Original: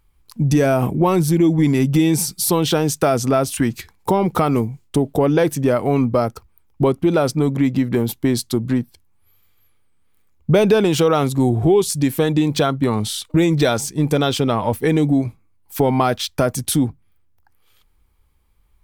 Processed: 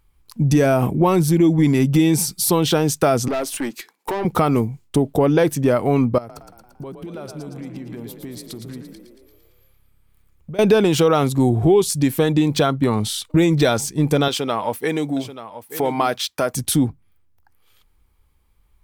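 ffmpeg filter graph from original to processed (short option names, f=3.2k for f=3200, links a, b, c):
-filter_complex "[0:a]asettb=1/sr,asplit=3[a][b][c];[a]atrim=end=3.284[d];[b]atrim=start=3.28:end=4.25,asetpts=PTS-STARTPTS,afade=t=in:d=0.004:c=qsin,afade=t=out:st=0.966:d=0.004:c=qsin,highpass=f=260:w=0.5412,highpass=f=260:w=1.3066,aeval=exprs='(tanh(8.91*val(0)+0.25)-tanh(0.25))/8.91':c=same[e];[c]atrim=start=4.246[f];[d][e]acrossfade=d=0.004:c1=hsin:c2=qsin[g];[g][f]acrossfade=d=0.004:c1=qsin:c2=hsin,asettb=1/sr,asplit=3[h][i][j];[h]atrim=end=6.184[k];[i]atrim=start=6.18:end=10.59,asetpts=PTS-STARTPTS,afade=t=in:d=0.004:c=qsin,afade=t=out:st=4.406:d=0.004:c=qsin,acompressor=threshold=-34dB:ratio=4:attack=3.2:release=140:knee=1:detection=peak,asplit=9[l][m][n][o][p][q][r][s][t];[m]adelay=114,afreqshift=34,volume=-7dB[u];[n]adelay=228,afreqshift=68,volume=-11.4dB[v];[o]adelay=342,afreqshift=102,volume=-15.9dB[w];[p]adelay=456,afreqshift=136,volume=-20.3dB[x];[q]adelay=570,afreqshift=170,volume=-24.7dB[y];[r]adelay=684,afreqshift=204,volume=-29.2dB[z];[s]adelay=798,afreqshift=238,volume=-33.6dB[aa];[t]adelay=912,afreqshift=272,volume=-38.1dB[ab];[l][u][v][w][x][y][z][aa][ab]amix=inputs=9:normalize=0,atrim=end_sample=194481[ac];[j]atrim=start=10.586[ad];[k][ac]acrossfade=d=0.004:c1=hsin:c2=qsin[ae];[ae][ad]acrossfade=d=0.004:c1=qsin:c2=hsin,asettb=1/sr,asplit=3[af][ag][ah];[af]atrim=end=14.284[ai];[ag]atrim=start=14.28:end=16.54,asetpts=PTS-STARTPTS,afade=t=in:d=0.004:c=qsin,afade=t=out:st=2.256:d=0.004:c=qsin,highpass=f=520:p=1,aecho=1:1:883:0.224,atrim=end_sample=99666[aj];[ah]atrim=start=16.536[ak];[ai][aj]acrossfade=d=0.004:c1=hsin:c2=qsin[al];[al][ak]acrossfade=d=0.004:c1=qsin:c2=hsin"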